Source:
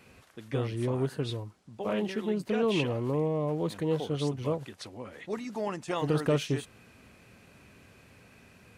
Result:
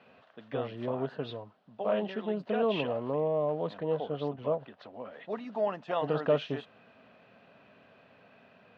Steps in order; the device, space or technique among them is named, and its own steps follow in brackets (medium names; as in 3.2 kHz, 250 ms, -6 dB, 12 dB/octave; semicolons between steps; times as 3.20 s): kitchen radio (cabinet simulation 220–3400 Hz, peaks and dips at 340 Hz -9 dB, 650 Hz +8 dB, 2.2 kHz -8 dB); 3.78–4.94 s: treble shelf 3.9 kHz -10.5 dB